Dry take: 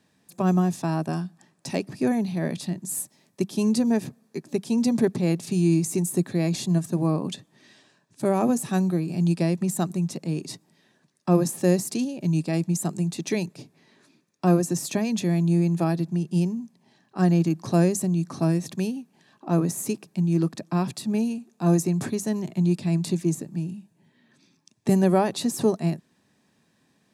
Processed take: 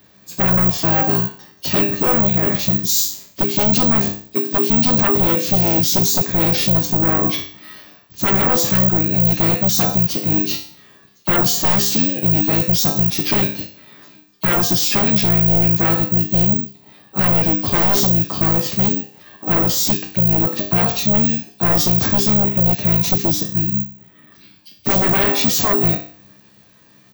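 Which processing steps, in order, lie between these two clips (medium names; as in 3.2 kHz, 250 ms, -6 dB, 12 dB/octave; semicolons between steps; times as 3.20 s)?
knee-point frequency compression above 3.1 kHz 1.5:1; treble shelf 3.2 kHz +3.5 dB; feedback comb 100 Hz, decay 0.47 s, harmonics all, mix 90%; sine folder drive 15 dB, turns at -19 dBFS; harmony voices -7 st -5 dB; careless resampling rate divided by 2×, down filtered, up zero stuff; trim +3 dB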